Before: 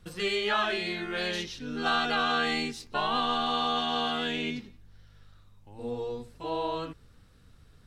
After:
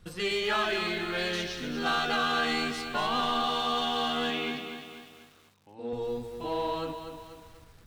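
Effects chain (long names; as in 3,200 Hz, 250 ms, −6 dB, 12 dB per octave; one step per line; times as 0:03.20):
in parallel at −3.5 dB: hard clipping −28.5 dBFS, distortion −9 dB
0:04.30–0:05.93: on the sum: band-pass filter 200–5,200 Hz
feedback echo at a low word length 243 ms, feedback 55%, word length 8 bits, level −8 dB
level −4 dB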